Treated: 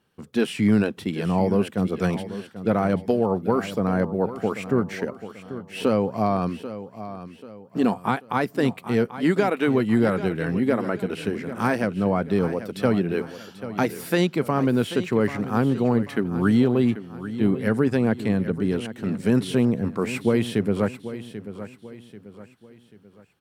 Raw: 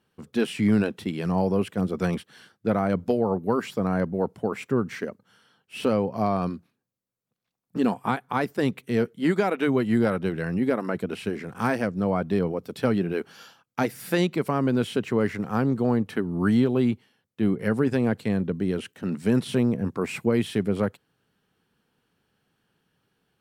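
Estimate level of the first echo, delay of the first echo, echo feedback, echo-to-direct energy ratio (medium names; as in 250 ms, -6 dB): -13.0 dB, 788 ms, 40%, -12.0 dB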